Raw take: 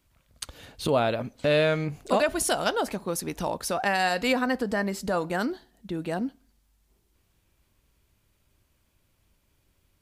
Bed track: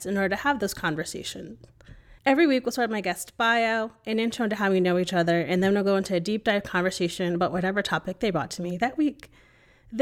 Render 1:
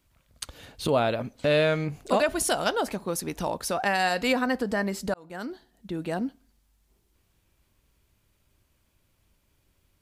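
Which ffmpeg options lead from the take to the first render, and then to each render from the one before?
-filter_complex "[0:a]asplit=2[a][b];[a]atrim=end=5.14,asetpts=PTS-STARTPTS,afade=t=out:st=5.136:d=0.004:c=hsin[c];[b]atrim=start=5.14,asetpts=PTS-STARTPTS,afade=t=in:d=1.05:c=qsin[d];[c][d]concat=n=2:v=0:a=1"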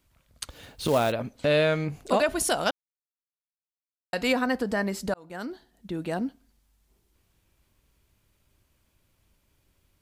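-filter_complex "[0:a]asettb=1/sr,asplit=3[a][b][c];[a]atrim=end=0.504[d];[b]atrim=start=0.5:end=1.12,asetpts=PTS-STARTPTS,afade=t=in:d=0.004:c=qsin,afade=t=out:st=0.616:d=0.004:c=qsin,acrusher=bits=4:mode=log:mix=0:aa=0.000001[e];[c]atrim=start=1.116[f];[d][e]acrossfade=d=0.004:c1=hsin:c2=qsin[g];[g][f]acrossfade=d=0.004:c1=qsin:c2=hsin,asplit=3[h][i][j];[h]atrim=end=2.71,asetpts=PTS-STARTPTS,afade=t=out:st=2.706:d=0.004:c=hsin[k];[i]atrim=start=2.71:end=4.13,asetpts=PTS-STARTPTS,volume=0[l];[j]atrim=start=4.13,asetpts=PTS-STARTPTS,afade=t=in:d=0.004:c=hsin[m];[k][l][m]concat=n=3:v=0:a=1"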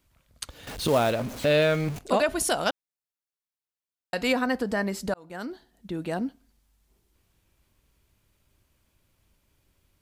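-filter_complex "[0:a]asettb=1/sr,asplit=3[a][b][c];[a]atrim=end=0.674[d];[b]atrim=start=0.67:end=1.99,asetpts=PTS-STARTPTS,afade=t=in:d=0.004:c=qsin,afade=t=out:st=1.316:d=0.004:c=qsin,aeval=exprs='val(0)+0.5*0.0211*sgn(val(0))':c=same[e];[c]atrim=start=1.986[f];[d][e]acrossfade=d=0.004:c1=hsin:c2=qsin[g];[g][f]acrossfade=d=0.004:c1=qsin:c2=hsin"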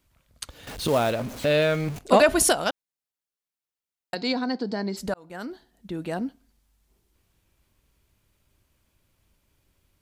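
-filter_complex "[0:a]asplit=3[a][b][c];[a]afade=t=out:st=2.11:d=0.02[d];[b]acontrast=79,afade=t=in:st=2.11:d=0.02,afade=t=out:st=2.51:d=0.02[e];[c]afade=t=in:st=2.51:d=0.02[f];[d][e][f]amix=inputs=3:normalize=0,asplit=3[g][h][i];[g]afade=t=out:st=4.14:d=0.02[j];[h]highpass=f=120:w=0.5412,highpass=f=120:w=1.3066,equalizer=f=350:t=q:w=4:g=4,equalizer=f=560:t=q:w=4:g=-7,equalizer=f=1.2k:t=q:w=4:g=-9,equalizer=f=1.8k:t=q:w=4:g=-8,equalizer=f=2.7k:t=q:w=4:g=-9,equalizer=f=4.4k:t=q:w=4:g=9,lowpass=f=5.5k:w=0.5412,lowpass=f=5.5k:w=1.3066,afade=t=in:st=4.14:d=0.02,afade=t=out:st=4.96:d=0.02[k];[i]afade=t=in:st=4.96:d=0.02[l];[j][k][l]amix=inputs=3:normalize=0"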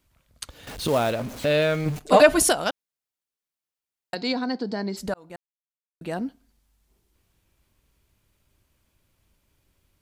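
-filter_complex "[0:a]asettb=1/sr,asplit=3[a][b][c];[a]atrim=end=1.854[d];[b]atrim=start=1.85:end=2.4,asetpts=PTS-STARTPTS,afade=t=in:d=0.004:c=qsin,afade=t=out:st=0.546:d=0.004:c=qsin,aecho=1:1:6.6:0.65,atrim=end_sample=24255[e];[c]atrim=start=2.396[f];[d][e]acrossfade=d=0.004:c1=hsin:c2=qsin[g];[g][f]acrossfade=d=0.004:c1=qsin:c2=hsin,asplit=3[h][i][j];[h]atrim=end=5.36,asetpts=PTS-STARTPTS,afade=t=out:st=5.356:d=0.004:c=hsin[k];[i]atrim=start=5.36:end=6.01,asetpts=PTS-STARTPTS,volume=0[l];[j]atrim=start=6.01,asetpts=PTS-STARTPTS,afade=t=in:d=0.004:c=hsin[m];[k][l][m]concat=n=3:v=0:a=1"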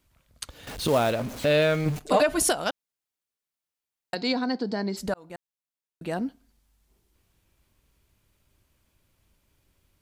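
-af "alimiter=limit=-11dB:level=0:latency=1:release=356"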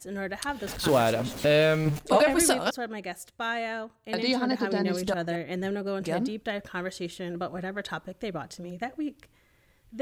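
-filter_complex "[1:a]volume=-8.5dB[a];[0:a][a]amix=inputs=2:normalize=0"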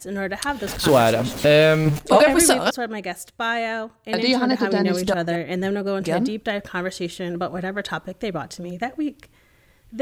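-af "volume=7dB"

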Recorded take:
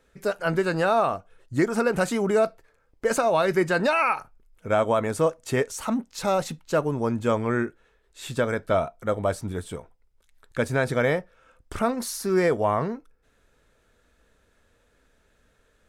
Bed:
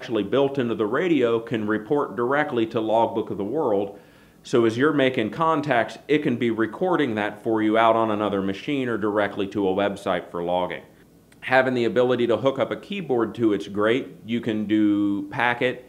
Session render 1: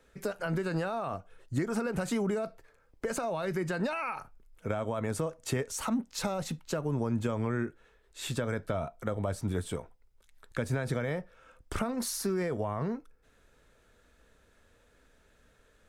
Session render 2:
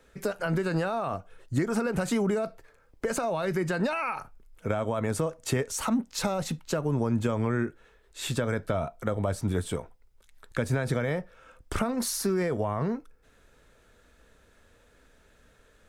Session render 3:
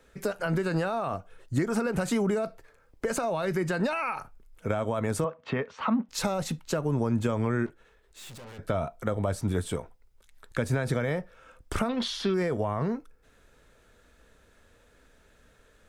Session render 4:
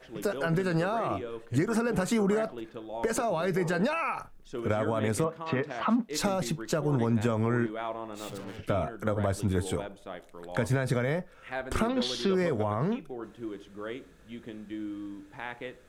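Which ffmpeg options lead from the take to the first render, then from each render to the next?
-filter_complex "[0:a]alimiter=limit=-17.5dB:level=0:latency=1:release=59,acrossover=split=200[a][b];[b]acompressor=threshold=-31dB:ratio=6[c];[a][c]amix=inputs=2:normalize=0"
-af "volume=4dB"
-filter_complex "[0:a]asettb=1/sr,asplit=3[a][b][c];[a]atrim=end=5.244[d];[b]atrim=start=5.24:end=6.09,asetpts=PTS-STARTPTS,afade=t=in:d=0.004:c=qsin,afade=t=out:st=0.846:d=0.004:c=qsin,highpass=160,equalizer=f=200:t=q:w=4:g=5,equalizer=f=340:t=q:w=4:g=-8,equalizer=f=1.1k:t=q:w=4:g=6,lowpass=f=3.2k:w=0.5412,lowpass=f=3.2k:w=1.3066[e];[c]atrim=start=6.086[f];[d][e]acrossfade=d=0.004:c1=hsin:c2=qsin[g];[g][f]acrossfade=d=0.004:c1=qsin:c2=hsin,asettb=1/sr,asplit=3[h][i][j];[h]atrim=end=7.664[k];[i]atrim=start=7.66:end=8.59,asetpts=PTS-STARTPTS,afade=t=in:d=0.004:c=qsin,afade=t=out:st=0.926:d=0.004:c=qsin,aeval=exprs='(tanh(158*val(0)+0.45)-tanh(0.45))/158':c=same[l];[j]atrim=start=8.586[m];[k][l]acrossfade=d=0.004:c1=hsin:c2=qsin[n];[n][m]acrossfade=d=0.004:c1=qsin:c2=hsin,asettb=1/sr,asplit=3[o][p][q];[o]atrim=end=11.894[r];[p]atrim=start=11.89:end=12.34,asetpts=PTS-STARTPTS,afade=t=in:d=0.004:c=qsin,afade=t=out:st=0.446:d=0.004:c=qsin,lowpass=f=3.3k:t=q:w=13[s];[q]atrim=start=12.336[t];[r][s]acrossfade=d=0.004:c1=hsin:c2=qsin[u];[u][t]acrossfade=d=0.004:c1=qsin:c2=hsin"
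-filter_complex "[1:a]volume=-17.5dB[a];[0:a][a]amix=inputs=2:normalize=0"

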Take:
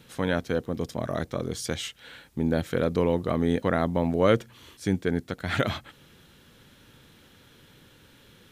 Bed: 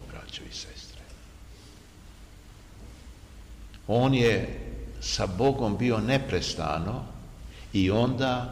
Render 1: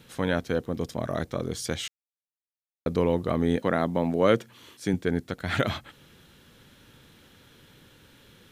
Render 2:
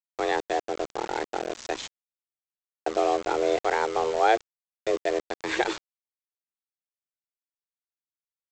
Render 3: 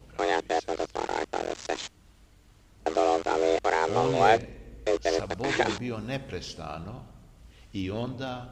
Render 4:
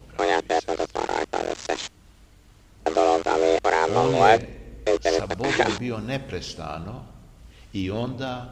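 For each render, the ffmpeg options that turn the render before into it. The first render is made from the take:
-filter_complex "[0:a]asettb=1/sr,asplit=3[a][b][c];[a]atrim=end=3.574[d];[b]atrim=start=3.57:end=4.94,asetpts=PTS-STARTPTS,afade=t=in:d=0.004:c=qsin,afade=t=out:st=1.366:d=0.004:c=qsin,highpass=130[e];[c]atrim=start=4.936[f];[d][e]acrossfade=d=0.004:c1=hsin:c2=qsin[g];[g][f]acrossfade=d=0.004:c1=qsin:c2=hsin,asplit=3[h][i][j];[h]atrim=end=1.88,asetpts=PTS-STARTPTS,afade=t=out:st=1.876:d=0.004:c=hsin[k];[i]atrim=start=1.88:end=2.86,asetpts=PTS-STARTPTS,volume=0[l];[j]atrim=start=2.86,asetpts=PTS-STARTPTS,afade=t=in:d=0.004:c=hsin[m];[k][l][m]concat=n=3:v=0:a=1"
-af "afreqshift=230,aresample=16000,aeval=exprs='val(0)*gte(abs(val(0)),0.0282)':c=same,aresample=44100"
-filter_complex "[1:a]volume=-8.5dB[a];[0:a][a]amix=inputs=2:normalize=0"
-af "volume=4.5dB"

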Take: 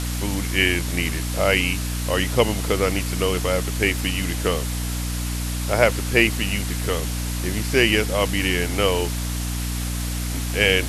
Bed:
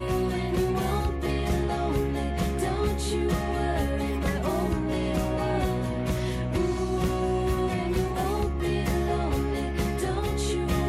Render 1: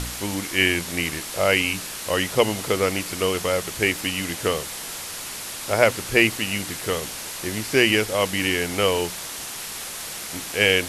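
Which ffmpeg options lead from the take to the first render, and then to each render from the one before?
-af "bandreject=f=60:t=h:w=4,bandreject=f=120:t=h:w=4,bandreject=f=180:t=h:w=4,bandreject=f=240:t=h:w=4,bandreject=f=300:t=h:w=4"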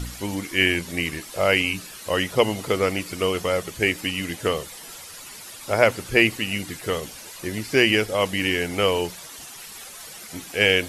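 -af "afftdn=nr=11:nf=-34"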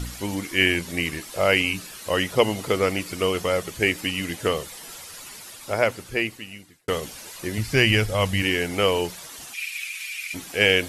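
-filter_complex "[0:a]asplit=3[a][b][c];[a]afade=t=out:st=7.57:d=0.02[d];[b]asubboost=boost=6:cutoff=120,afade=t=in:st=7.57:d=0.02,afade=t=out:st=8.41:d=0.02[e];[c]afade=t=in:st=8.41:d=0.02[f];[d][e][f]amix=inputs=3:normalize=0,asplit=3[g][h][i];[g]afade=t=out:st=9.53:d=0.02[j];[h]highpass=f=2.4k:t=q:w=16,afade=t=in:st=9.53:d=0.02,afade=t=out:st=10.33:d=0.02[k];[i]afade=t=in:st=10.33:d=0.02[l];[j][k][l]amix=inputs=3:normalize=0,asplit=2[m][n];[m]atrim=end=6.88,asetpts=PTS-STARTPTS,afade=t=out:st=5.25:d=1.63[o];[n]atrim=start=6.88,asetpts=PTS-STARTPTS,afade=t=in:d=0.004:c=hsin[p];[o][p]concat=n=2:v=0:a=1"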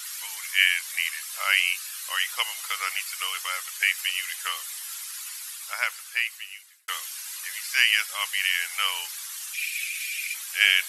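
-af "highpass=f=1.2k:w=0.5412,highpass=f=1.2k:w=1.3066,highshelf=f=8.4k:g=9"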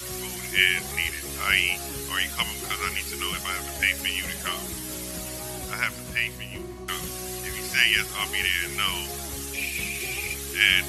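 -filter_complex "[1:a]volume=-11.5dB[a];[0:a][a]amix=inputs=2:normalize=0"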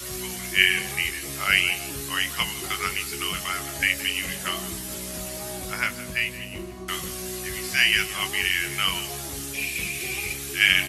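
-filter_complex "[0:a]asplit=2[a][b];[b]adelay=21,volume=-7dB[c];[a][c]amix=inputs=2:normalize=0,aecho=1:1:170:0.15"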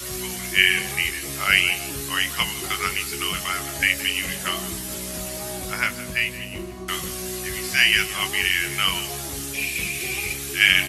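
-af "volume=2.5dB,alimiter=limit=-1dB:level=0:latency=1"

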